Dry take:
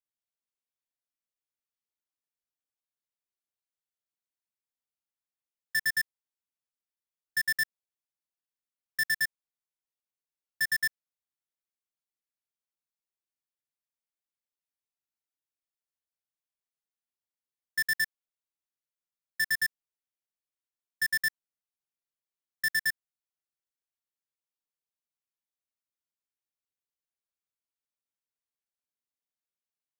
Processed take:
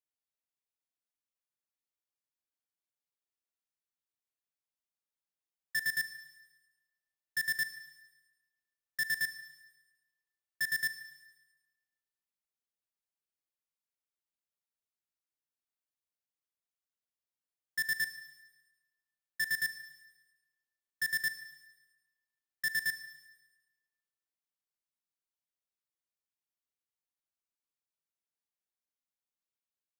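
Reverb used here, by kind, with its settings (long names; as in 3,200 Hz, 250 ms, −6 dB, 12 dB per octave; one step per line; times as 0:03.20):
four-comb reverb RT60 1.2 s, combs from 31 ms, DRR 12 dB
level −4.5 dB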